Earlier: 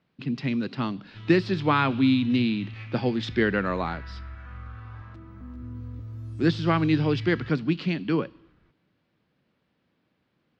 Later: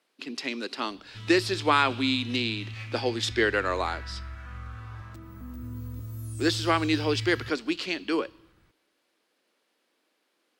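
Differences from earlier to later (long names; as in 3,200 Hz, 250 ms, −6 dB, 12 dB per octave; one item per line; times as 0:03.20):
speech: add high-pass filter 320 Hz 24 dB per octave
master: remove high-frequency loss of the air 220 metres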